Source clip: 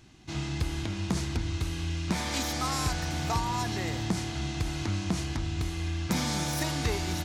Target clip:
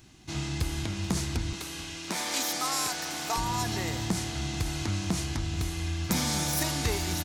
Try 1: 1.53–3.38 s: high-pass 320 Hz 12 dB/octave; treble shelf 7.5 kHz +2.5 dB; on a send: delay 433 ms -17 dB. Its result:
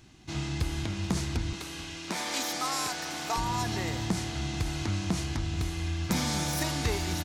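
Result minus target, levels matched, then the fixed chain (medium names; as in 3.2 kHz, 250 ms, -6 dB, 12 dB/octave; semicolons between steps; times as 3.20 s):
8 kHz band -2.5 dB
1.53–3.38 s: high-pass 320 Hz 12 dB/octave; treble shelf 7.5 kHz +10.5 dB; on a send: delay 433 ms -17 dB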